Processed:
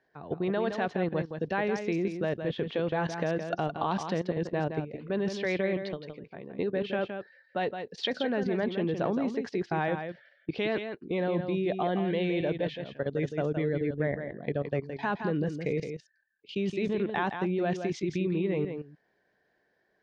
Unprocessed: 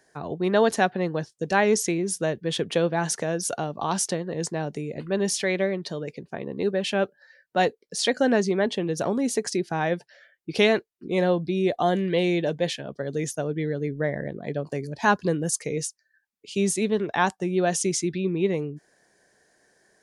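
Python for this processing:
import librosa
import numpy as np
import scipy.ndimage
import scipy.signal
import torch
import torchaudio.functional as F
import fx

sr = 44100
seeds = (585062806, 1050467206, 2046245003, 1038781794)

p1 = scipy.signal.sosfilt(scipy.signal.butter(4, 3700.0, 'lowpass', fs=sr, output='sos'), x)
p2 = fx.level_steps(p1, sr, step_db=15)
p3 = p2 + fx.echo_single(p2, sr, ms=167, db=-7.5, dry=0)
y = F.gain(torch.from_numpy(p3), 1.5).numpy()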